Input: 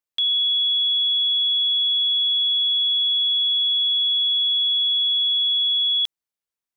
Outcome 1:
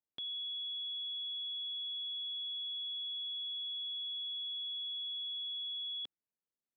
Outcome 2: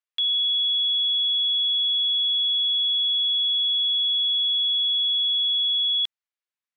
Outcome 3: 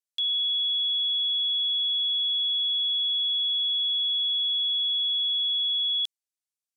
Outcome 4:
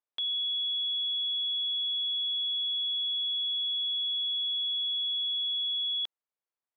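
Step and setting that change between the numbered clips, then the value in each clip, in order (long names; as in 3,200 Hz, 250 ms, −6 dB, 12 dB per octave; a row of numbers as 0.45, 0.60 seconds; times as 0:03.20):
resonant band-pass, frequency: 250, 2,000, 7,900, 750 Hertz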